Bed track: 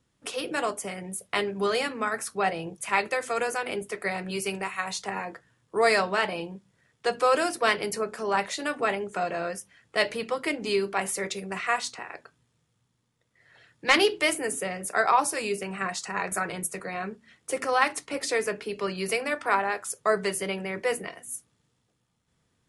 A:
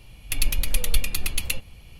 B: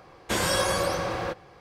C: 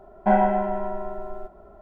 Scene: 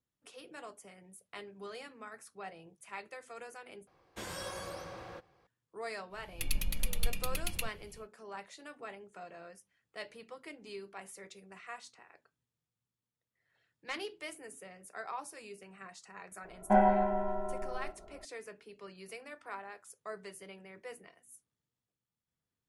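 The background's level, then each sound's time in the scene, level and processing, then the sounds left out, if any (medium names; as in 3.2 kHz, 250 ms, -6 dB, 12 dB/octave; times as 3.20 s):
bed track -19.5 dB
3.87 s: replace with B -17 dB
6.09 s: add A -10.5 dB, fades 0.10 s + peaking EQ 180 Hz +7.5 dB
16.44 s: add C -6 dB + band-stop 2.5 kHz, Q 29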